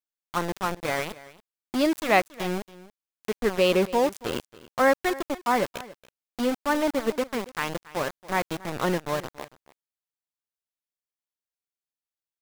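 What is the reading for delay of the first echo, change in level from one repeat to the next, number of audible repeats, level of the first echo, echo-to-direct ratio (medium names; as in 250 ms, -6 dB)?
280 ms, no regular repeats, 1, -19.0 dB, -19.0 dB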